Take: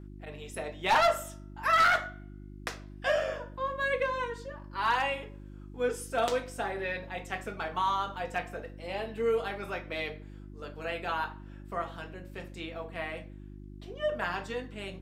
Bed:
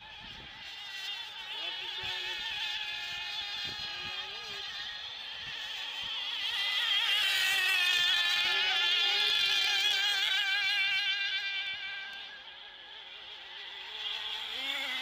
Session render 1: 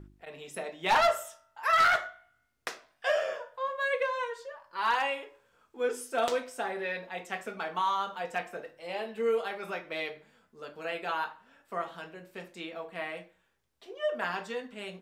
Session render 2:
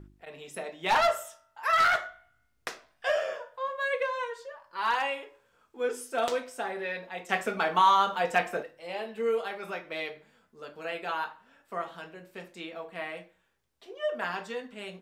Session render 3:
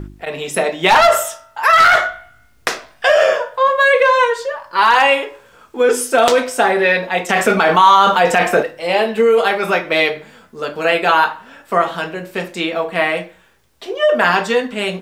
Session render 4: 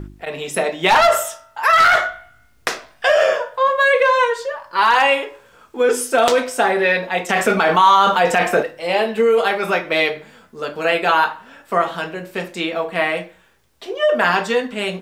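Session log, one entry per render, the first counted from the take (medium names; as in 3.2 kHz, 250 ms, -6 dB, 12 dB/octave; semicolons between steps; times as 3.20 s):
de-hum 50 Hz, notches 7
2.09–3.19 s: bass shelf 110 Hz +10 dB; 7.29–8.63 s: gain +8 dB
in parallel at +2 dB: compressor with a negative ratio -31 dBFS, ratio -1; on the sum: loudness maximiser +11.5 dB
trim -2.5 dB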